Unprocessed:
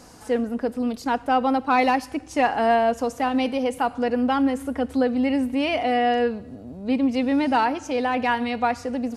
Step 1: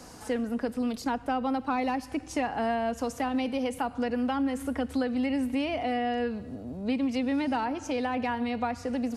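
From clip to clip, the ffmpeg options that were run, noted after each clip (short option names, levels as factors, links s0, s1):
-filter_complex "[0:a]acrossover=split=220|1100[s0][s1][s2];[s0]acompressor=threshold=0.0224:ratio=4[s3];[s1]acompressor=threshold=0.0282:ratio=4[s4];[s2]acompressor=threshold=0.0126:ratio=4[s5];[s3][s4][s5]amix=inputs=3:normalize=0"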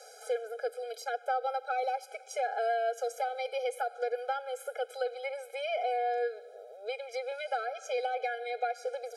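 -af "afftfilt=real='re*eq(mod(floor(b*sr/1024/420),2),1)':imag='im*eq(mod(floor(b*sr/1024/420),2),1)':win_size=1024:overlap=0.75"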